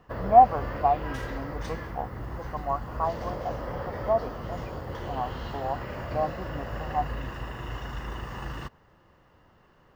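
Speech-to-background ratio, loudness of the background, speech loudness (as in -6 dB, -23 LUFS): 9.0 dB, -36.5 LUFS, -27.5 LUFS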